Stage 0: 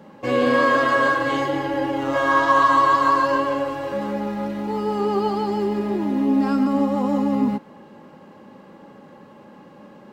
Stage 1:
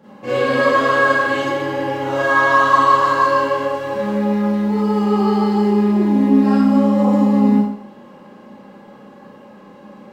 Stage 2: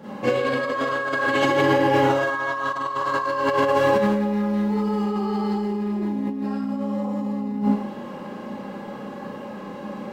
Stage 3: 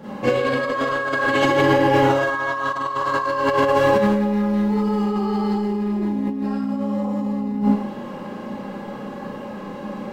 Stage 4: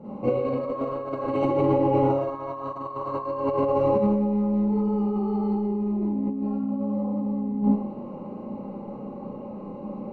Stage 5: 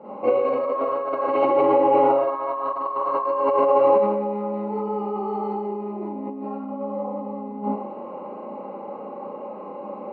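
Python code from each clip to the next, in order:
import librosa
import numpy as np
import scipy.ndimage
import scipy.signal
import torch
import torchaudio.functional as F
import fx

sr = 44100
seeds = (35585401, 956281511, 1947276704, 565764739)

y1 = fx.rev_schroeder(x, sr, rt60_s=0.59, comb_ms=30, drr_db=-8.5)
y1 = F.gain(torch.from_numpy(y1), -5.5).numpy()
y2 = fx.over_compress(y1, sr, threshold_db=-23.0, ratio=-1.0)
y3 = fx.low_shelf(y2, sr, hz=61.0, db=10.0)
y3 = F.gain(torch.from_numpy(y3), 2.0).numpy()
y4 = scipy.signal.lfilter(np.full(26, 1.0 / 26), 1.0, y3)
y4 = F.gain(torch.from_numpy(y4), -3.0).numpy()
y5 = fx.bandpass_edges(y4, sr, low_hz=540.0, high_hz=2500.0)
y5 = F.gain(torch.from_numpy(y5), 8.5).numpy()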